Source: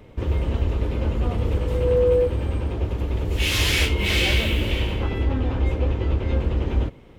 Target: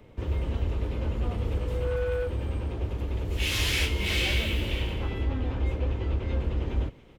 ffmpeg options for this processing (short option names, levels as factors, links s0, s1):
-filter_complex "[0:a]acrossover=split=100|1600[s0][s1][s2];[s1]asoftclip=type=tanh:threshold=0.075[s3];[s2]aecho=1:1:277:0.168[s4];[s0][s3][s4]amix=inputs=3:normalize=0,volume=0.531"